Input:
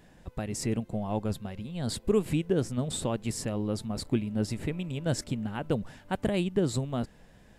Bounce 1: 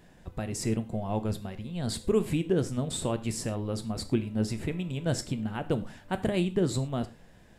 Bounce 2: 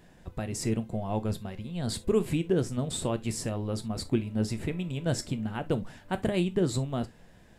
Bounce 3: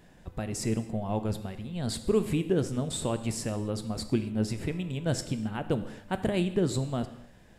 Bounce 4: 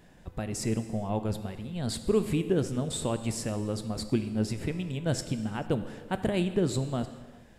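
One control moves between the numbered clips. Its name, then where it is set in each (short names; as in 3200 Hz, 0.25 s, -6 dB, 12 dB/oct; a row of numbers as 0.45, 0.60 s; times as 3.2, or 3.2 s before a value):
non-linear reverb, gate: 140, 90, 300, 480 ms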